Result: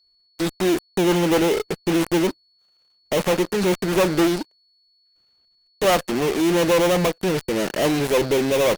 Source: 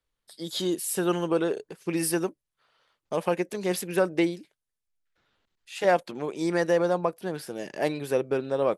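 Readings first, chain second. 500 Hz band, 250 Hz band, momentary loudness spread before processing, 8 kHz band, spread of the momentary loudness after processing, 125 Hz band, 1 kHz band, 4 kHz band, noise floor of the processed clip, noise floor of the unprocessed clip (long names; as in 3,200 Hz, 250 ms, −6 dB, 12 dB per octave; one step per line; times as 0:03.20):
+6.0 dB, +8.5 dB, 10 LU, +5.0 dB, 6 LU, +9.0 dB, +6.0 dB, +10.5 dB, −63 dBFS, −85 dBFS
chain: gap after every zero crossing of 0.3 ms
harmonic generator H 2 −13 dB, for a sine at −10.5 dBFS
steady tone 4,400 Hz −60 dBFS
in parallel at −7 dB: fuzz pedal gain 44 dB, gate −47 dBFS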